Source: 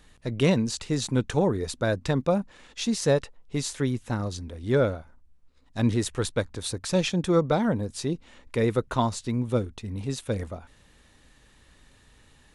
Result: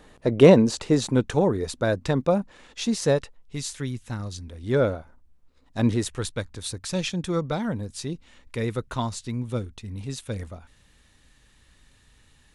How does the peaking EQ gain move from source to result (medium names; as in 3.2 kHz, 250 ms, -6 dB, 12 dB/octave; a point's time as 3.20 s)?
peaking EQ 520 Hz 2.8 oct
0.79 s +12 dB
1.32 s +2.5 dB
3.03 s +2.5 dB
3.57 s -8 dB
4.35 s -8 dB
4.92 s +3.5 dB
5.86 s +3.5 dB
6.29 s -5.5 dB